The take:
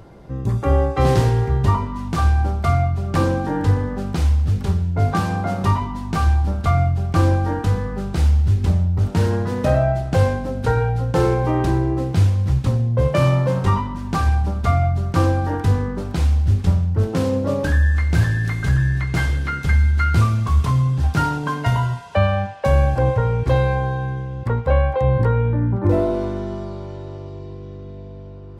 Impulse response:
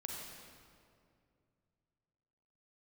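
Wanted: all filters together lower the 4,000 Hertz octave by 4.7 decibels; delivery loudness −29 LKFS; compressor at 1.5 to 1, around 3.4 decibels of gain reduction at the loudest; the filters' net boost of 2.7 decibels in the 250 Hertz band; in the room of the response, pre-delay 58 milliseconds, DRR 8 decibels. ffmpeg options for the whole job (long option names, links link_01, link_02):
-filter_complex "[0:a]equalizer=frequency=250:width_type=o:gain=4,equalizer=frequency=4000:width_type=o:gain=-6.5,acompressor=threshold=-20dB:ratio=1.5,asplit=2[link_01][link_02];[1:a]atrim=start_sample=2205,adelay=58[link_03];[link_02][link_03]afir=irnorm=-1:irlink=0,volume=-7dB[link_04];[link_01][link_04]amix=inputs=2:normalize=0,volume=-8.5dB"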